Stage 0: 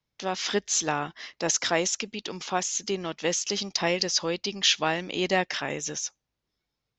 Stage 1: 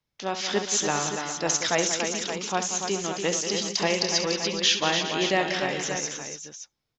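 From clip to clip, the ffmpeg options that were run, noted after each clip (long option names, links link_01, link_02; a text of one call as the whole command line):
ffmpeg -i in.wav -af "aecho=1:1:67|183|289|409|571:0.299|0.316|0.473|0.2|0.335" out.wav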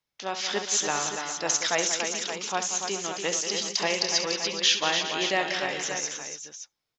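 ffmpeg -i in.wav -af "lowshelf=frequency=330:gain=-11" out.wav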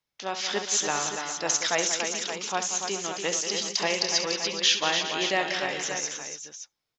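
ffmpeg -i in.wav -af anull out.wav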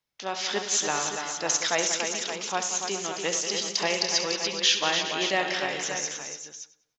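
ffmpeg -i in.wav -filter_complex "[0:a]asplit=2[link_01][link_02];[link_02]adelay=98,lowpass=frequency=4600:poles=1,volume=-14dB,asplit=2[link_03][link_04];[link_04]adelay=98,lowpass=frequency=4600:poles=1,volume=0.4,asplit=2[link_05][link_06];[link_06]adelay=98,lowpass=frequency=4600:poles=1,volume=0.4,asplit=2[link_07][link_08];[link_08]adelay=98,lowpass=frequency=4600:poles=1,volume=0.4[link_09];[link_01][link_03][link_05][link_07][link_09]amix=inputs=5:normalize=0" out.wav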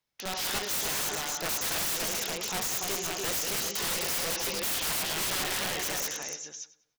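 ffmpeg -i in.wav -af "aeval=exprs='(mod(17.8*val(0)+1,2)-1)/17.8':channel_layout=same" out.wav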